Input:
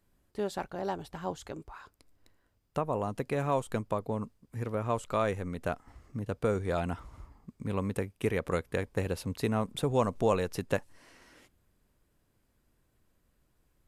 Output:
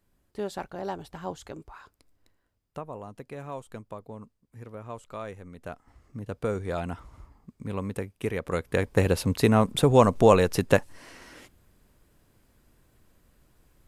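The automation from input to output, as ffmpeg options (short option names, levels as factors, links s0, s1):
-af "volume=8.41,afade=t=out:st=1.79:d=1.21:silence=0.354813,afade=t=in:st=5.52:d=0.91:silence=0.375837,afade=t=in:st=8.48:d=0.52:silence=0.334965"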